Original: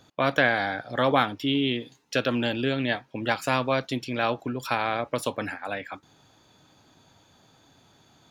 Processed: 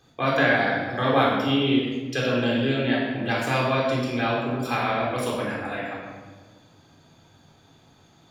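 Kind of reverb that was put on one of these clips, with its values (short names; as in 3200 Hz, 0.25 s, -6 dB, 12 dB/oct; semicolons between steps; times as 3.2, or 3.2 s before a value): shoebox room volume 1200 m³, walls mixed, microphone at 3.8 m; gain -5.5 dB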